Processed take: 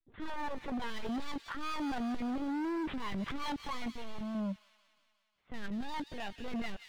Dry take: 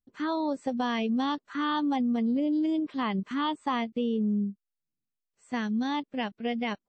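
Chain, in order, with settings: 5.63–6.39 s: peaking EQ 120 Hz -12.5 dB 2 oct; transient shaper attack -8 dB, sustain +10 dB; LPC vocoder at 8 kHz pitch kept; vibrato 1.9 Hz 94 cents; overload inside the chain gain 33.5 dB; 3.90–4.35 s: peaking EQ 380 Hz -11.5 dB 1.1 oct; feedback echo behind a high-pass 179 ms, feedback 62%, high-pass 2.6 kHz, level -6 dB

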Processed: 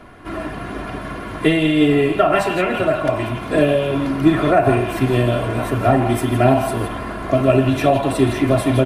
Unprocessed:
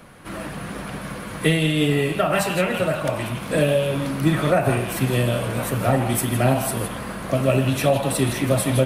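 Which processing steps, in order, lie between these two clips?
low-pass 1.9 kHz 6 dB/octave; comb 2.9 ms, depth 61%; trim +4.5 dB

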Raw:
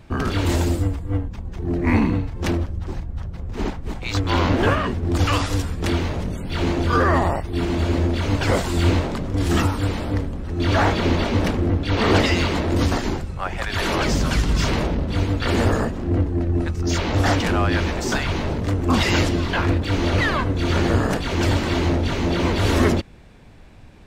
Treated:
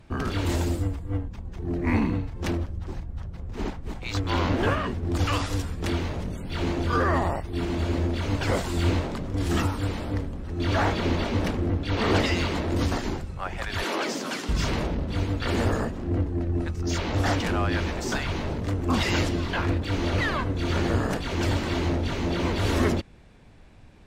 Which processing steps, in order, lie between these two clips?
13.84–14.49 s: high-pass 240 Hz 24 dB/octave; trim -5.5 dB; SBC 192 kbps 44.1 kHz

